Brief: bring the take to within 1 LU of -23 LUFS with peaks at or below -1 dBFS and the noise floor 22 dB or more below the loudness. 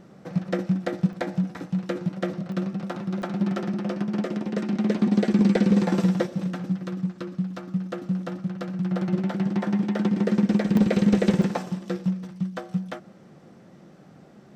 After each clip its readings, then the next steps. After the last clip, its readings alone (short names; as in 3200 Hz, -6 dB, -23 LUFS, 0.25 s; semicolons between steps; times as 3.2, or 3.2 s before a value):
dropouts 5; longest dropout 1.1 ms; loudness -25.5 LUFS; peak -10.5 dBFS; loudness target -23.0 LUFS
-> interpolate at 1.13/2.52/3.22/10.77/11.42, 1.1 ms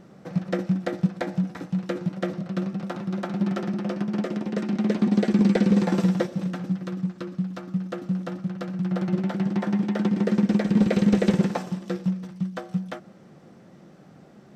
dropouts 0; loudness -25.5 LUFS; peak -10.5 dBFS; loudness target -23.0 LUFS
-> gain +2.5 dB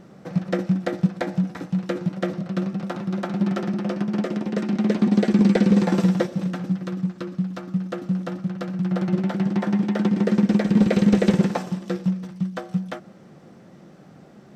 loudness -23.0 LUFS; peak -8.0 dBFS; noise floor -48 dBFS